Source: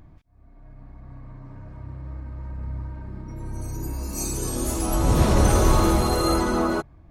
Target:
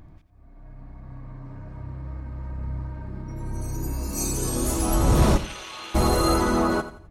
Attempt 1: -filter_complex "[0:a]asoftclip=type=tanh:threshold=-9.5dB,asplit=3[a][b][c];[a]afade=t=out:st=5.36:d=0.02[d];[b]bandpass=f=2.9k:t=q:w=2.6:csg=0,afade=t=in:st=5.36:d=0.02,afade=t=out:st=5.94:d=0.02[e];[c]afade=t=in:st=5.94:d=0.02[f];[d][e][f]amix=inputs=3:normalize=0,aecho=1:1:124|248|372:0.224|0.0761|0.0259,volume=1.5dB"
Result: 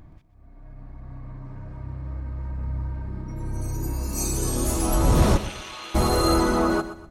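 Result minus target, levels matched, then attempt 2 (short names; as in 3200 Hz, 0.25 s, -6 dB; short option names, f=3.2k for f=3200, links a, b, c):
echo 38 ms late
-filter_complex "[0:a]asoftclip=type=tanh:threshold=-9.5dB,asplit=3[a][b][c];[a]afade=t=out:st=5.36:d=0.02[d];[b]bandpass=f=2.9k:t=q:w=2.6:csg=0,afade=t=in:st=5.36:d=0.02,afade=t=out:st=5.94:d=0.02[e];[c]afade=t=in:st=5.94:d=0.02[f];[d][e][f]amix=inputs=3:normalize=0,aecho=1:1:86|172|258:0.224|0.0761|0.0259,volume=1.5dB"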